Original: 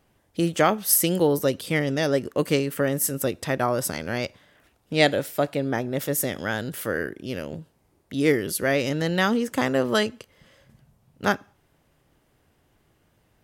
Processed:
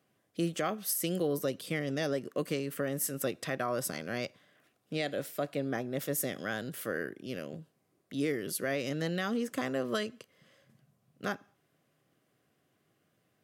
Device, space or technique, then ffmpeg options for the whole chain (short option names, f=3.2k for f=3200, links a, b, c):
PA system with an anti-feedback notch: -filter_complex "[0:a]asettb=1/sr,asplit=3[a][b][c];[a]atrim=end=2.984[d];[b]atrim=start=2.98:end=3.79,asetpts=PTS-STARTPTS,afade=t=in:d=0.004:c=qsin,afade=t=out:st=0.806:d=0.004:c=qsin,equalizer=f=1.9k:w=0.41:g=3.5[e];[c]atrim=start=3.786[f];[d][e]acrossfade=d=0.004:c1=hsin:c2=qsin[g];[g][f]acrossfade=d=0.004:c1=qsin:c2=hsin,highpass=f=120:w=0.5412,highpass=f=120:w=1.3066,asuperstop=centerf=890:order=12:qfactor=6.3,alimiter=limit=-14dB:level=0:latency=1:release=176,volume=-7.5dB"